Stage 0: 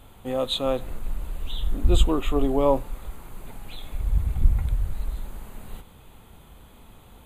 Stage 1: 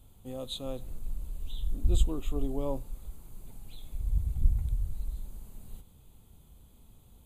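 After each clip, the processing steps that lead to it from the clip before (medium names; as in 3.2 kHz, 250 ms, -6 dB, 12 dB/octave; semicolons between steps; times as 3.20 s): FFT filter 120 Hz 0 dB, 1.8 kHz -15 dB, 5.6 kHz 0 dB; trim -6 dB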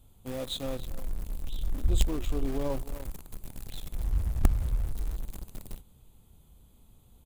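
echo from a far wall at 50 m, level -16 dB; in parallel at -11 dB: companded quantiser 2-bit; on the sum: trim -1.5 dB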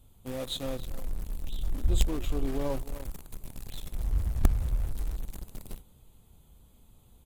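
AAC 64 kbps 48 kHz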